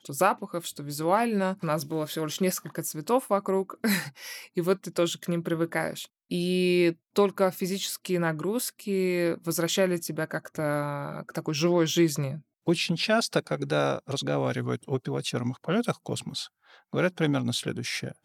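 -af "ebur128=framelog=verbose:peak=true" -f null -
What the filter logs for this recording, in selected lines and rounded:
Integrated loudness:
  I:         -28.0 LUFS
  Threshold: -38.1 LUFS
Loudness range:
  LRA:         3.0 LU
  Threshold: -48.0 LUFS
  LRA low:   -29.7 LUFS
  LRA high:  -26.7 LUFS
True peak:
  Peak:       -8.7 dBFS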